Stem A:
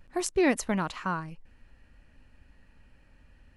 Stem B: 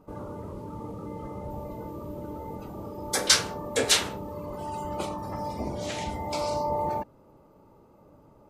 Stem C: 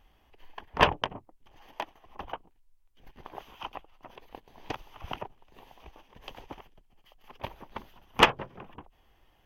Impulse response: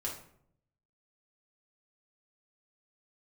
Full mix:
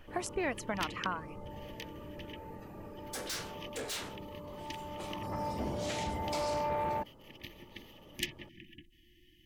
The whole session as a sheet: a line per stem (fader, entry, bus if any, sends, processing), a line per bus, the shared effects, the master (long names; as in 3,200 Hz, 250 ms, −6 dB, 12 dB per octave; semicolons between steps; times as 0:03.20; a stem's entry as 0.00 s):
−2.0 dB, 0.00 s, no send, reverb reduction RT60 0.66 s; flat-topped bell 1,200 Hz +8 dB 2.7 octaves; downward compressor 3 to 1, threshold −33 dBFS, peak gain reduction 13.5 dB
0:05.03 −8.5 dB → 0:05.34 −1.5 dB, 0.00 s, no send, soft clipping −27 dBFS, distortion −6 dB
−16.5 dB, 0.00 s, no send, brick-wall band-stop 360–1,700 Hz; hollow resonant body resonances 370/3,000 Hz, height 13 dB; every bin compressed towards the loudest bin 2 to 1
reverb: not used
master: no processing